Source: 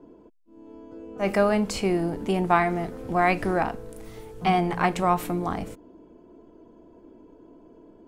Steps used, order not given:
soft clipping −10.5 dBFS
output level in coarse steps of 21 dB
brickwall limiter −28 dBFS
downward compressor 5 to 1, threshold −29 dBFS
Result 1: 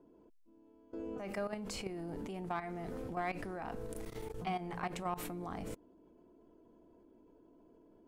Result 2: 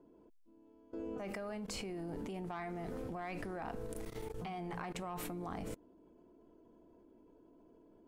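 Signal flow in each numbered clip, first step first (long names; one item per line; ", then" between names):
output level in coarse steps, then soft clipping, then brickwall limiter, then downward compressor
soft clipping, then downward compressor, then output level in coarse steps, then brickwall limiter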